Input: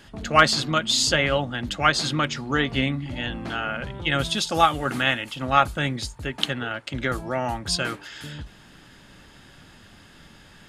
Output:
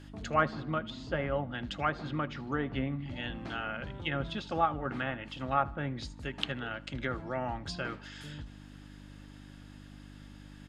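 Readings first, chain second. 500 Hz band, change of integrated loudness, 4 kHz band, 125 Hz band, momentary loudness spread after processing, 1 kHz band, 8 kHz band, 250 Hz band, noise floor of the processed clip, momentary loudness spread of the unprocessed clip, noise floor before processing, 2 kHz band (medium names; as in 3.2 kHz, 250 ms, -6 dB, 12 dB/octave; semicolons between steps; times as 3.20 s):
-8.5 dB, -11.5 dB, -17.0 dB, -8.0 dB, 20 LU, -10.0 dB, -25.5 dB, -8.0 dB, -50 dBFS, 11 LU, -50 dBFS, -12.5 dB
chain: low-pass that closes with the level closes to 1.3 kHz, closed at -19 dBFS; feedback delay 78 ms, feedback 50%, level -22 dB; mains buzz 50 Hz, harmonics 6, -42 dBFS -2 dB/octave; trim -8.5 dB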